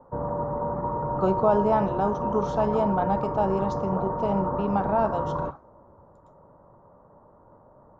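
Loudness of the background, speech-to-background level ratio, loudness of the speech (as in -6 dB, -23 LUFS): -29.5 LUFS, 3.0 dB, -26.5 LUFS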